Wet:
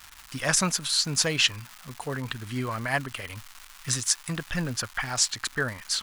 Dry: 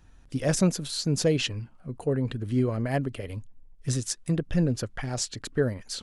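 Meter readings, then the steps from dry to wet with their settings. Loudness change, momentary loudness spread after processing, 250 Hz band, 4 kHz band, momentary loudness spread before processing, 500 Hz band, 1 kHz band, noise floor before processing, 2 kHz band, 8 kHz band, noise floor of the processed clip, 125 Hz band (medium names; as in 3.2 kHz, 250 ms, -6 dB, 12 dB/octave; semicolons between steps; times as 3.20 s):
+2.0 dB, 17 LU, -6.5 dB, +8.0 dB, 13 LU, -6.5 dB, +6.0 dB, -53 dBFS, +9.0 dB, +7.5 dB, -50 dBFS, -6.0 dB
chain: crackle 410 per s -40 dBFS; resonant low shelf 710 Hz -13 dB, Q 1.5; trim +7.5 dB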